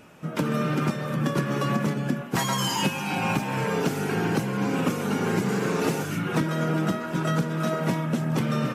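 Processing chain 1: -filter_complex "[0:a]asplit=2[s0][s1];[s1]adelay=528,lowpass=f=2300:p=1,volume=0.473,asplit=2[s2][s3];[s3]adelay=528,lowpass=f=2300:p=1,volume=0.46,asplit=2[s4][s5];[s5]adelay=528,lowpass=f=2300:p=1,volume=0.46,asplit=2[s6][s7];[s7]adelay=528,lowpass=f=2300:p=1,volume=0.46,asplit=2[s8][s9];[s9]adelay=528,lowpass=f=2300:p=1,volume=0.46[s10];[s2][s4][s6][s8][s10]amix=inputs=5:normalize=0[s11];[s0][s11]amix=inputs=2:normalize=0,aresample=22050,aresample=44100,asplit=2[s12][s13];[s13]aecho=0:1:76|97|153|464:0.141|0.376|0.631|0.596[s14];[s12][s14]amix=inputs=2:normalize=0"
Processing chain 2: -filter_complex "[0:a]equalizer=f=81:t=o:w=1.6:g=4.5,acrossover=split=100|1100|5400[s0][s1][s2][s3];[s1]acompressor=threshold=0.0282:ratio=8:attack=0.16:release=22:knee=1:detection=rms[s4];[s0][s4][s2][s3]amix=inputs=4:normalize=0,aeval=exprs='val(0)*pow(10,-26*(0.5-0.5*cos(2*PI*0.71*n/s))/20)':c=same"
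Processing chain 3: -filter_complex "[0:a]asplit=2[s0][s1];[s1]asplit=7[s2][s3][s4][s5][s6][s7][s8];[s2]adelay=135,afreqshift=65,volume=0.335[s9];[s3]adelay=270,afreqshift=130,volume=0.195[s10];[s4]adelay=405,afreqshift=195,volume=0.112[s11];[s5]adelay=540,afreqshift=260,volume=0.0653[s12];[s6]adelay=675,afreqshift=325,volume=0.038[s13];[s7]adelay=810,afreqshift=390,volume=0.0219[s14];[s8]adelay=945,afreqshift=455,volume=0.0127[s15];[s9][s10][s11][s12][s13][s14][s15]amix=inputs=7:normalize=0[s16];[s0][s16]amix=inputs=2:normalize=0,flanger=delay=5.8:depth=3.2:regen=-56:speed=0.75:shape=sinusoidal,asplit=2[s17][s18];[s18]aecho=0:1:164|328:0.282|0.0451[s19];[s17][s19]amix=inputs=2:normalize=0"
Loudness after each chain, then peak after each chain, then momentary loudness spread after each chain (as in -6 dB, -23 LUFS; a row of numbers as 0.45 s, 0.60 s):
-22.5 LUFS, -34.0 LUFS, -29.0 LUFS; -9.0 dBFS, -16.0 dBFS, -14.0 dBFS; 3 LU, 21 LU, 2 LU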